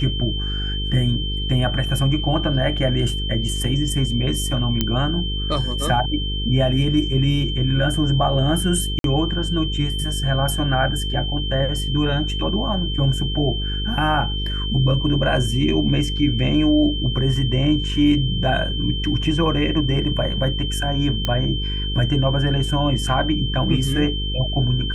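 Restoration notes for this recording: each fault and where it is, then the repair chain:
buzz 50 Hz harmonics 9 -25 dBFS
whine 3.1 kHz -27 dBFS
4.81 s: pop -5 dBFS
8.99–9.04 s: dropout 52 ms
21.25 s: pop -8 dBFS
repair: de-click; band-stop 3.1 kHz, Q 30; de-hum 50 Hz, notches 9; interpolate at 8.99 s, 52 ms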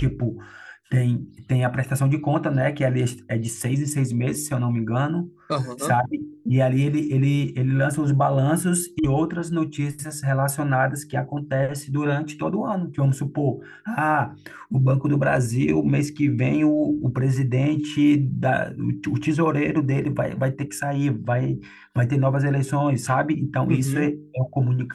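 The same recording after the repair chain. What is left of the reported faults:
nothing left

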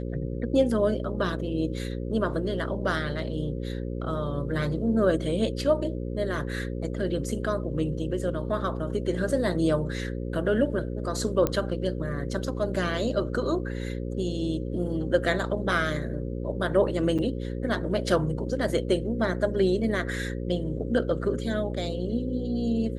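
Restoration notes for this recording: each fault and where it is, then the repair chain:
buzz 60 Hz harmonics 9 -32 dBFS
11.47 s: pop -11 dBFS
17.18–17.19 s: dropout 6.7 ms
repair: de-click; de-hum 60 Hz, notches 9; interpolate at 17.18 s, 6.7 ms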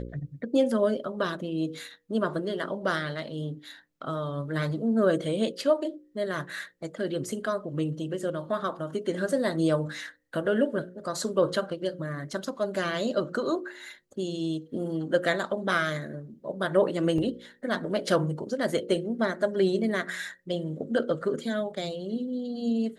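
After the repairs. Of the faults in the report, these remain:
nothing left

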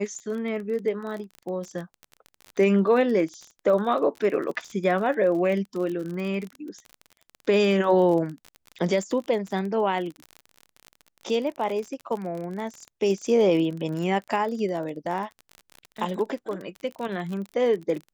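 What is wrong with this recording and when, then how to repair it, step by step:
crackle 35 per s -31 dBFS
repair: de-click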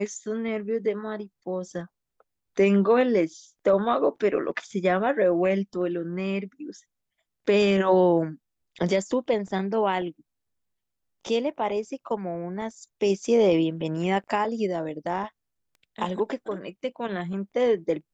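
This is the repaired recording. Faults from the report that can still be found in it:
nothing left

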